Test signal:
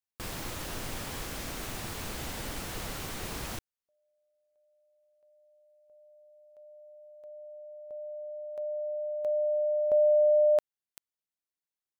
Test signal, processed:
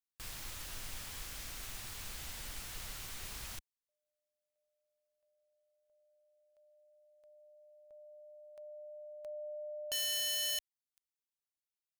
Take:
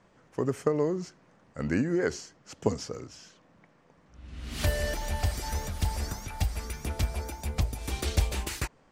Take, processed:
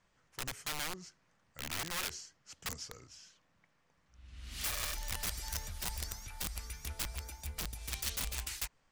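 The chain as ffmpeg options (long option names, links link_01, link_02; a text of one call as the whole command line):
ffmpeg -i in.wav -af "aeval=exprs='(mod(15.8*val(0)+1,2)-1)/15.8':channel_layout=same,equalizer=frequency=330:width=0.31:gain=-14,volume=-4dB" out.wav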